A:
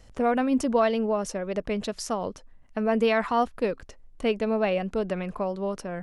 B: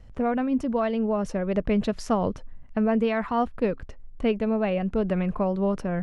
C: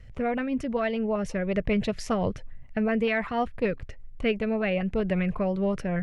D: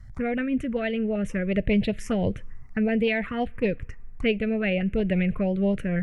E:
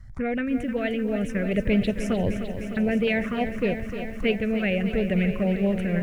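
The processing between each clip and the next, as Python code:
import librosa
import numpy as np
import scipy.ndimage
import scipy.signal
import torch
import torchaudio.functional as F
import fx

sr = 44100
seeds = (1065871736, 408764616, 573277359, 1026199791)

y1 = fx.bass_treble(x, sr, bass_db=8, treble_db=-11)
y1 = fx.rider(y1, sr, range_db=10, speed_s=0.5)
y1 = y1 * 10.0 ** (-1.0 / 20.0)
y2 = fx.graphic_eq_10(y1, sr, hz=(125, 250, 1000, 2000), db=(5, -5, -3, 8))
y2 = fx.filter_lfo_notch(y2, sr, shape='saw_up', hz=5.2, low_hz=740.0, high_hz=1900.0, q=2.2)
y3 = fx.rev_double_slope(y2, sr, seeds[0], early_s=0.21, late_s=2.5, knee_db=-22, drr_db=19.5)
y3 = fx.env_phaser(y3, sr, low_hz=440.0, high_hz=1300.0, full_db=-21.0)
y3 = y3 * 10.0 ** (3.5 / 20.0)
y4 = fx.echo_crushed(y3, sr, ms=304, feedback_pct=80, bits=9, wet_db=-10.0)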